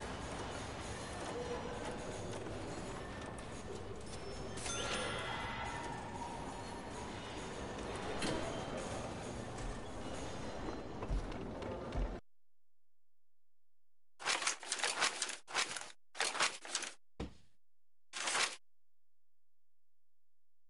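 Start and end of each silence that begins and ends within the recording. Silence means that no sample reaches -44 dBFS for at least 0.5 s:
12.19–14.21
17.28–18.13

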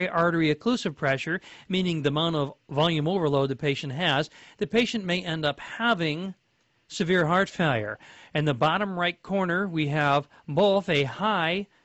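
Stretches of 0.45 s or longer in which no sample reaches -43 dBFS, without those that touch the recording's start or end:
6.32–6.9

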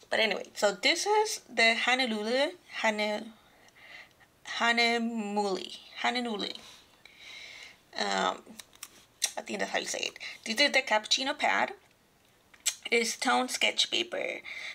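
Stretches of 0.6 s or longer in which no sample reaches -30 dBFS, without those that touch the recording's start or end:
3.19–4.51
6.55–7.97
11.68–12.66

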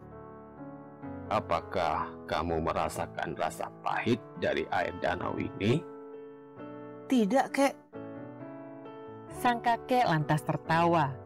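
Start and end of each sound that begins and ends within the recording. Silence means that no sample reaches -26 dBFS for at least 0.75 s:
1.31–5.77
7.1–7.68

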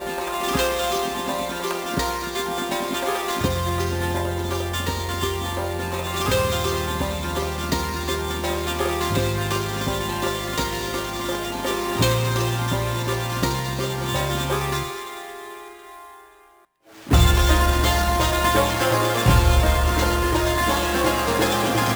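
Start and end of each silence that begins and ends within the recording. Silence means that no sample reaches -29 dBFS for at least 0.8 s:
15.57–17.07

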